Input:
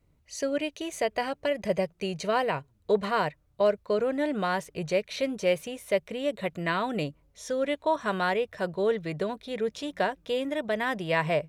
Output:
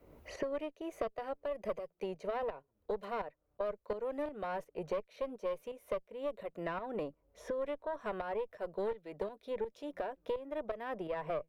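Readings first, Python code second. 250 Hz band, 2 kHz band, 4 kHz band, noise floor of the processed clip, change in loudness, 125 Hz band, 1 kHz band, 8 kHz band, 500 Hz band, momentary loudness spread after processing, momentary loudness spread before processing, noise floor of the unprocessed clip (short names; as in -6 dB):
-13.0 dB, -16.0 dB, -19.0 dB, -78 dBFS, -11.0 dB, -16.5 dB, -11.0 dB, under -15 dB, -9.5 dB, 4 LU, 6 LU, -66 dBFS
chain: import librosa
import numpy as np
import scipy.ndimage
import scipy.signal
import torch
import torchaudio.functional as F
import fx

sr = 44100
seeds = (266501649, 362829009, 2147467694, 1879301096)

y = fx.graphic_eq_10(x, sr, hz=(125, 500, 2000, 4000, 8000), db=(-9, 6, -4, -8, -12))
y = fx.tremolo_shape(y, sr, shape='saw_up', hz=2.8, depth_pct=65)
y = fx.low_shelf(y, sr, hz=140.0, db=-9.5)
y = fx.tube_stage(y, sr, drive_db=19.0, bias=0.75)
y = fx.band_squash(y, sr, depth_pct=100)
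y = y * 10.0 ** (-6.0 / 20.0)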